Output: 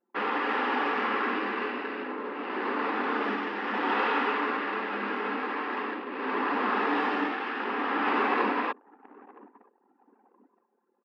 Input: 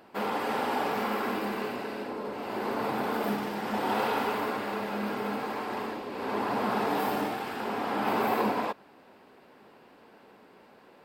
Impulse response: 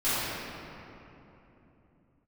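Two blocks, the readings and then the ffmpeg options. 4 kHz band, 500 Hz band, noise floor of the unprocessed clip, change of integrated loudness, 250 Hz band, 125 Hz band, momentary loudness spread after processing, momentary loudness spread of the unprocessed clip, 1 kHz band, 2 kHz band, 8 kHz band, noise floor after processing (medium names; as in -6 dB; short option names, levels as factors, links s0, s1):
+1.0 dB, -1.0 dB, -56 dBFS, +2.0 dB, 0.0 dB, no reading, 8 LU, 7 LU, +1.5 dB, +6.5 dB, under -15 dB, -73 dBFS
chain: -filter_complex "[0:a]asplit=2[s0][s1];[s1]aecho=0:1:969|1938|2907|3876:0.1|0.056|0.0314|0.0176[s2];[s0][s2]amix=inputs=2:normalize=0,anlmdn=0.251,highpass=f=270:w=0.5412,highpass=f=270:w=1.3066,equalizer=f=270:t=q:w=4:g=8,equalizer=f=650:t=q:w=4:g=-8,equalizer=f=1200:t=q:w=4:g=7,equalizer=f=1800:t=q:w=4:g=9,equalizer=f=2700:t=q:w=4:g=5,equalizer=f=4300:t=q:w=4:g=-4,lowpass=f=4500:w=0.5412,lowpass=f=4500:w=1.3066"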